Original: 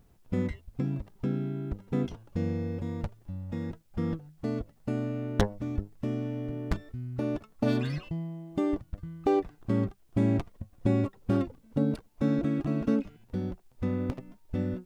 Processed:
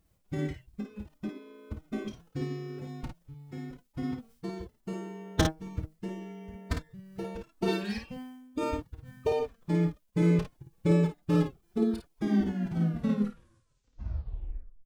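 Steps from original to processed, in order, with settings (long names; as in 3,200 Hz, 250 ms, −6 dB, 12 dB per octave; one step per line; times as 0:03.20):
turntable brake at the end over 2.77 s
high-shelf EQ 2,000 Hz +7.5 dB
phase-vocoder pitch shift with formants kept +7.5 semitones
ambience of single reflections 30 ms −10.5 dB, 54 ms −3.5 dB
expander for the loud parts 1.5 to 1, over −40 dBFS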